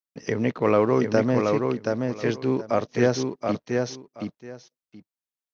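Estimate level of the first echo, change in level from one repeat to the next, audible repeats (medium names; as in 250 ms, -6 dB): -4.0 dB, -15.0 dB, 2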